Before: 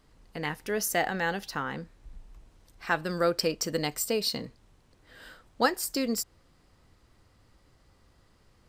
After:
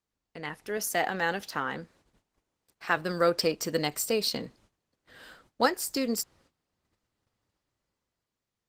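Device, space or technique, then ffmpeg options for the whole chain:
video call: -filter_complex "[0:a]asettb=1/sr,asplit=3[link_01][link_02][link_03];[link_01]atrim=end=0.774[link_04];[link_02]atrim=start=0.77:end=2.97,asetpts=PTS-STARTPTS,afade=type=in:duration=0.004:curve=qsin,afade=type=out:start_time=2.196:duration=0.004:curve=qsin,highpass=frequency=150:poles=1[link_05];[link_03]atrim=start=2.966[link_06];[link_04][link_05]acrossfade=duration=0.004:curve1=hsin:curve2=qsin[link_07];[link_07][link_06]acrossfade=duration=0.004:curve1=qsin:curve2=hsin,highpass=frequency=140:poles=1,dynaudnorm=framelen=130:gausssize=13:maxgain=7dB,agate=range=-18dB:threshold=-55dB:ratio=16:detection=peak,volume=-4.5dB" -ar 48000 -c:a libopus -b:a 16k

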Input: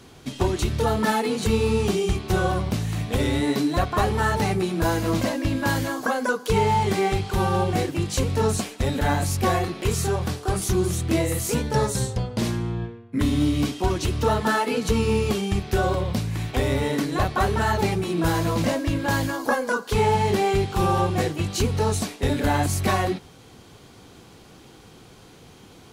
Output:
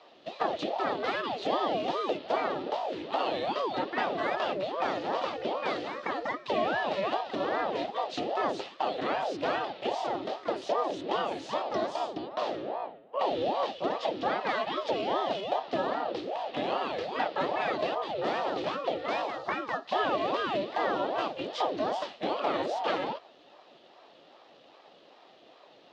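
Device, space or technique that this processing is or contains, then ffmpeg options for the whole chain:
voice changer toy: -af "aeval=exprs='val(0)*sin(2*PI*520*n/s+520*0.65/2.5*sin(2*PI*2.5*n/s))':channel_layout=same,highpass=410,equalizer=frequency=440:width_type=q:width=4:gain=-4,equalizer=frequency=1000:width_type=q:width=4:gain=-8,equalizer=frequency=1500:width_type=q:width=4:gain=-8,equalizer=frequency=2200:width_type=q:width=4:gain=-7,lowpass=frequency=3900:width=0.5412,lowpass=frequency=3900:width=1.3066"

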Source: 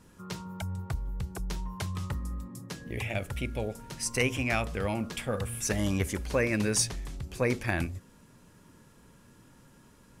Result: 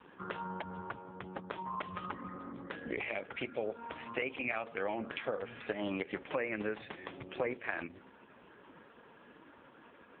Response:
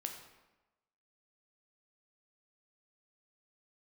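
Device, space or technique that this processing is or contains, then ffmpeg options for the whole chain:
voicemail: -af "highpass=370,lowpass=3100,acompressor=threshold=-41dB:ratio=6,volume=9.5dB" -ar 8000 -c:a libopencore_amrnb -b:a 4750

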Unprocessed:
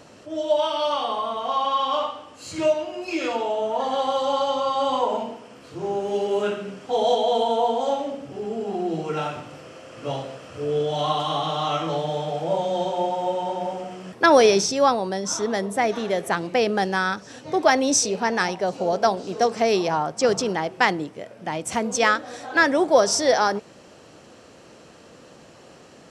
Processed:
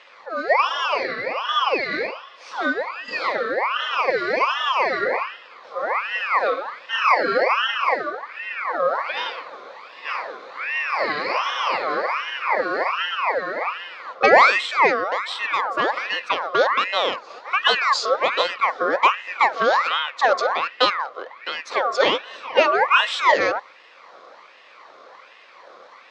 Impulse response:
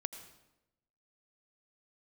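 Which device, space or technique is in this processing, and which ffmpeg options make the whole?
voice changer toy: -af "aeval=exprs='val(0)*sin(2*PI*1600*n/s+1600*0.45/1.3*sin(2*PI*1.3*n/s))':channel_layout=same,highpass=410,equalizer=frequency=520:width_type=q:width=4:gain=10,equalizer=frequency=1100:width_type=q:width=4:gain=8,equalizer=frequency=1600:width_type=q:width=4:gain=-6,equalizer=frequency=2800:width_type=q:width=4:gain=-5,lowpass=frequency=4700:width=0.5412,lowpass=frequency=4700:width=1.3066,volume=4dB"

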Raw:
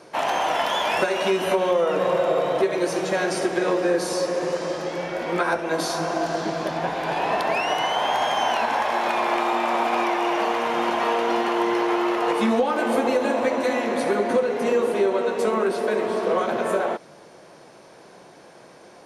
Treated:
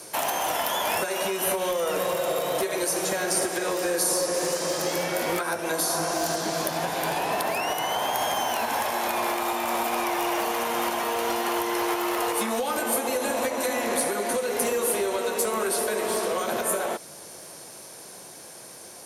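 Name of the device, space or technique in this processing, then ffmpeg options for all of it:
FM broadcast chain: -filter_complex "[0:a]highpass=73,dynaudnorm=framelen=310:gausssize=17:maxgain=3dB,acrossover=split=470|2000[link_01][link_02][link_03];[link_01]acompressor=threshold=-29dB:ratio=4[link_04];[link_02]acompressor=threshold=-23dB:ratio=4[link_05];[link_03]acompressor=threshold=-39dB:ratio=4[link_06];[link_04][link_05][link_06]amix=inputs=3:normalize=0,aemphasis=mode=production:type=50fm,alimiter=limit=-16.5dB:level=0:latency=1:release=491,asoftclip=type=hard:threshold=-20dB,lowpass=frequency=15000:width=0.5412,lowpass=frequency=15000:width=1.3066,aemphasis=mode=production:type=50fm,equalizer=frequency=88:width=2.6:gain=9"

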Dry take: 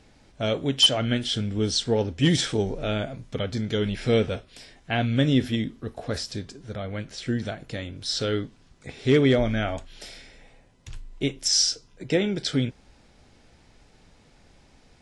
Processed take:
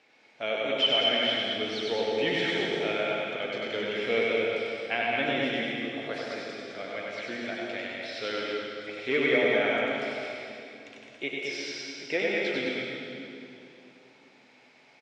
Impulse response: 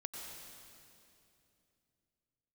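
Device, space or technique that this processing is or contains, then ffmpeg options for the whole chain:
station announcement: -filter_complex "[0:a]acrossover=split=3200[link_01][link_02];[link_02]acompressor=threshold=-42dB:ratio=4:attack=1:release=60[link_03];[link_01][link_03]amix=inputs=2:normalize=0,highpass=450,lowpass=4700,equalizer=frequency=2300:width_type=o:width=0.49:gain=8.5,aecho=1:1:96.21|212.8:0.708|0.562[link_04];[1:a]atrim=start_sample=2205[link_05];[link_04][link_05]afir=irnorm=-1:irlink=0"

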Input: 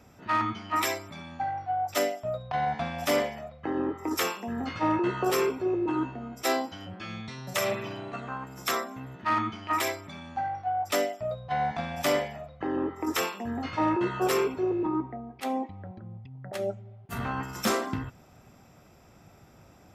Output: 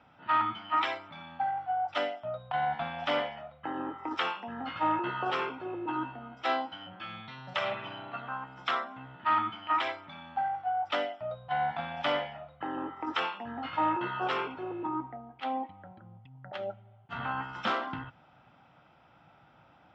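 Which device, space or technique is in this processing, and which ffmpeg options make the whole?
guitar cabinet: -af "highpass=91,equalizer=frequency=94:width_type=q:width=4:gain=-8,equalizer=frequency=210:width_type=q:width=4:gain=-6,equalizer=frequency=400:width_type=q:width=4:gain=-9,equalizer=frequency=860:width_type=q:width=4:gain=8,equalizer=frequency=1400:width_type=q:width=4:gain=8,equalizer=frequency=3100:width_type=q:width=4:gain=8,lowpass=frequency=3800:width=0.5412,lowpass=frequency=3800:width=1.3066,volume=-5dB"

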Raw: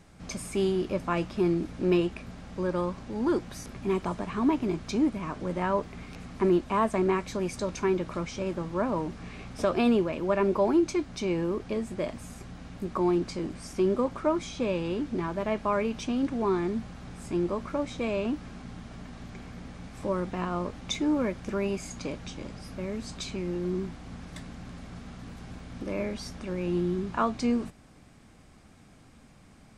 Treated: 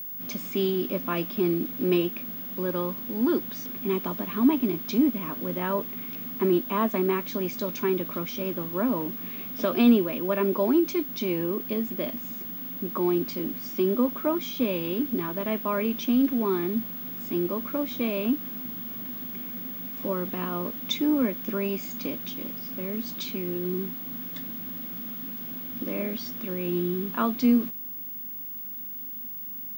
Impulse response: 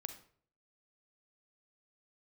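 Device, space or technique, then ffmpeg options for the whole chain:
old television with a line whistle: -af "highpass=frequency=160:width=0.5412,highpass=frequency=160:width=1.3066,equalizer=frequency=250:width_type=q:width=4:gain=8,equalizer=frequency=800:width_type=q:width=4:gain=-6,equalizer=frequency=3300:width_type=q:width=4:gain=7,lowpass=frequency=6600:width=0.5412,lowpass=frequency=6600:width=1.3066,aeval=exprs='val(0)+0.02*sin(2*PI*15625*n/s)':channel_layout=same"

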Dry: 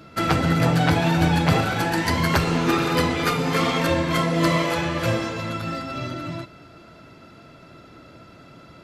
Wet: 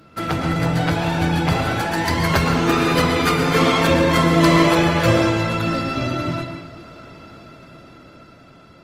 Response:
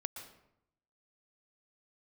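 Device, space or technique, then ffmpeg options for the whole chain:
speakerphone in a meeting room: -filter_complex "[1:a]atrim=start_sample=2205[link_01];[0:a][link_01]afir=irnorm=-1:irlink=0,dynaudnorm=framelen=600:gausssize=7:maxgain=11.5dB" -ar 48000 -c:a libopus -b:a 24k

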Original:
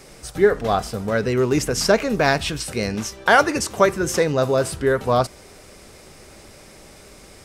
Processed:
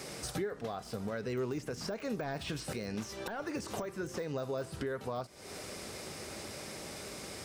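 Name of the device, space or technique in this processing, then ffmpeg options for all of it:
broadcast voice chain: -af "highpass=93,deesser=0.75,acompressor=threshold=-32dB:ratio=5,equalizer=frequency=4400:width_type=o:width=0.77:gain=2,alimiter=level_in=4dB:limit=-24dB:level=0:latency=1:release=354,volume=-4dB,volume=1dB"

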